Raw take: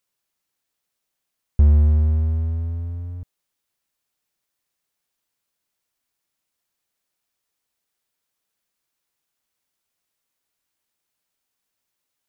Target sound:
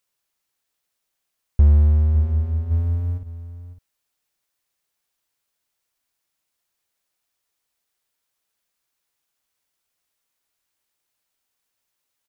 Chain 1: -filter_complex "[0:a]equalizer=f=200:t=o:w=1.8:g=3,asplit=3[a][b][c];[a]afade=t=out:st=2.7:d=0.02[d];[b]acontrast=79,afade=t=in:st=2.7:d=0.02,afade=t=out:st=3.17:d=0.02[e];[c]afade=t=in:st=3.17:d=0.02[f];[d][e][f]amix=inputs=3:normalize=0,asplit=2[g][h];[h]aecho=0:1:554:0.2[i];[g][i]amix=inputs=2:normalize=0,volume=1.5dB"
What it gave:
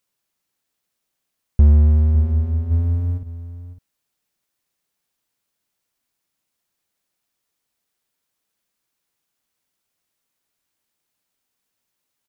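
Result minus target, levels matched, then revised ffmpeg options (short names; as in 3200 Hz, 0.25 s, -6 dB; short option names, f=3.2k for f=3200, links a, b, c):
250 Hz band +5.0 dB
-filter_complex "[0:a]equalizer=f=200:t=o:w=1.8:g=-4,asplit=3[a][b][c];[a]afade=t=out:st=2.7:d=0.02[d];[b]acontrast=79,afade=t=in:st=2.7:d=0.02,afade=t=out:st=3.17:d=0.02[e];[c]afade=t=in:st=3.17:d=0.02[f];[d][e][f]amix=inputs=3:normalize=0,asplit=2[g][h];[h]aecho=0:1:554:0.2[i];[g][i]amix=inputs=2:normalize=0,volume=1.5dB"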